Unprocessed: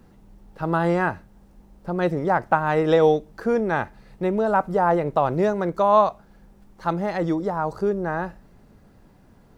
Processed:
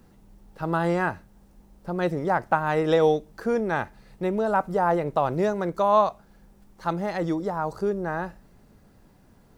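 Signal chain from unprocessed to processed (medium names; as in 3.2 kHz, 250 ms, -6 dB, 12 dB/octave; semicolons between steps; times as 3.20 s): treble shelf 4.3 kHz +6 dB; trim -3 dB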